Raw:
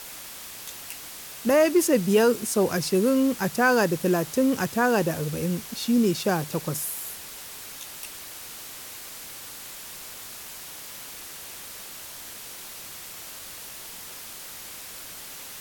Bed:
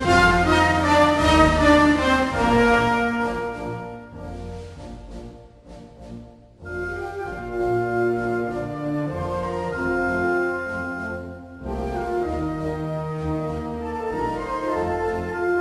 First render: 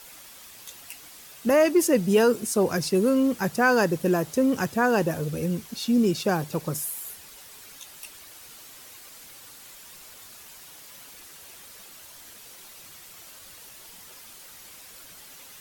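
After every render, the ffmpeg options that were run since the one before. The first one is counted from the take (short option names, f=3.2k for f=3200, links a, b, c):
-af "afftdn=nr=8:nf=-41"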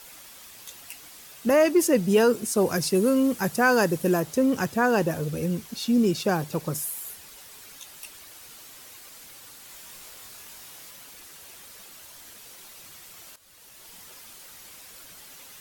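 -filter_complex "[0:a]asettb=1/sr,asplit=3[a][b][c];[a]atrim=end=2.574[d];[b]atrim=start=2.57:end=4.2,asetpts=PTS-STARTPTS,afade=t=in:d=0.004:c=qsin,afade=t=out:st=1.626:d=0.004:c=qsin,equalizer=f=11k:w=0.69:g=5[e];[c]atrim=start=4.196[f];[d][e]acrossfade=d=0.004:c1=hsin:c2=qsin[g];[g][f]acrossfade=d=0.004:c1=qsin:c2=hsin,asettb=1/sr,asplit=3[h][i][j];[h]atrim=end=9.684[k];[i]atrim=start=9.68:end=10.91,asetpts=PTS-STARTPTS,afade=t=in:d=0.004:c=qsin,afade=t=out:st=1.226:d=0.004:c=qsin,asplit=2[l][m];[m]adelay=22,volume=-3.5dB[n];[l][n]amix=inputs=2:normalize=0,atrim=end_sample=54243[o];[j]atrim=start=10.906[p];[k][o]acrossfade=d=0.004:c1=hsin:c2=qsin[q];[q][p]acrossfade=d=0.004:c1=qsin:c2=hsin,asplit=2[r][s];[r]atrim=end=13.36,asetpts=PTS-STARTPTS,afade=t=out:st=13.356:d=0.004:c=hsin:silence=0.188365[t];[s]atrim=start=13.36,asetpts=PTS-STARTPTS,afade=t=in:d=0.6:silence=0.188365[u];[t][u]concat=n=2:v=0:a=1"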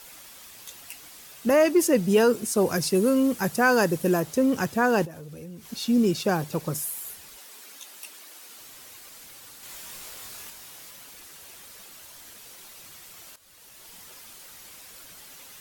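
-filter_complex "[0:a]asettb=1/sr,asplit=3[a][b][c];[a]atrim=end=5.054[d];[b]atrim=start=5.05:end=5.71,asetpts=PTS-STARTPTS,afade=t=in:d=0.004:c=qsin,afade=t=out:st=0.656:d=0.004:c=qsin,acompressor=threshold=-40dB:ratio=4:attack=3.2:release=140:knee=1:detection=peak[e];[c]atrim=start=5.706[f];[d][e]acrossfade=d=0.004:c1=hsin:c2=qsin[g];[g][f]acrossfade=d=0.004:c1=qsin:c2=hsin,asettb=1/sr,asplit=3[h][i][j];[h]atrim=end=7.384[k];[i]atrim=start=7.38:end=8.58,asetpts=PTS-STARTPTS,afade=t=in:d=0.004:c=qsin,afade=t=out:st=1.196:d=0.004:c=qsin,highpass=f=210:w=0.5412,highpass=f=210:w=1.3066[l];[j]atrim=start=8.576[m];[k][l]acrossfade=d=0.004:c1=hsin:c2=qsin[n];[n][m]acrossfade=d=0.004:c1=qsin:c2=hsin,asplit=3[o][p][q];[o]atrim=end=9.632[r];[p]atrim=start=9.628:end=10.502,asetpts=PTS-STARTPTS,volume=3.5dB[s];[q]atrim=start=10.498[t];[r][s]acrossfade=d=0.004:c1=hsin:c2=hsin[u];[u][t]acrossfade=d=0.004:c1=hsin:c2=hsin"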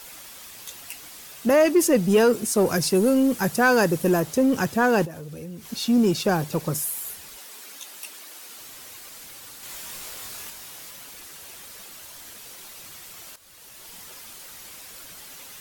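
-filter_complex "[0:a]asplit=2[a][b];[b]asoftclip=type=tanh:threshold=-24dB,volume=-5dB[c];[a][c]amix=inputs=2:normalize=0,acrusher=bits=9:mix=0:aa=0.000001"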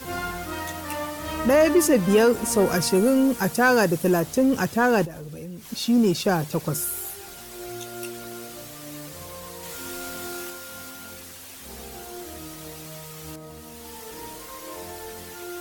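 -filter_complex "[1:a]volume=-15dB[a];[0:a][a]amix=inputs=2:normalize=0"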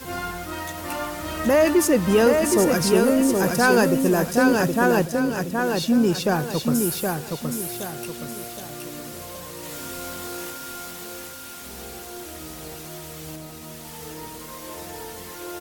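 -af "aecho=1:1:770|1540|2310|3080|3850:0.631|0.24|0.0911|0.0346|0.0132"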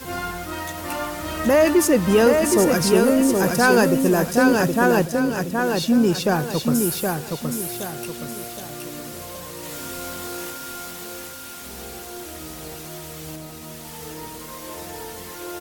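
-af "volume=1.5dB"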